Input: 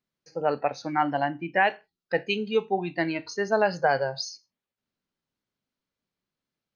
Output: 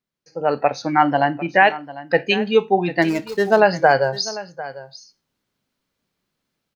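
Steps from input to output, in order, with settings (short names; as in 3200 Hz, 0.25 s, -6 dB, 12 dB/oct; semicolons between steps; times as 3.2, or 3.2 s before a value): 3.02–3.6 median filter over 15 samples; AGC gain up to 11 dB; on a send: echo 0.748 s -16.5 dB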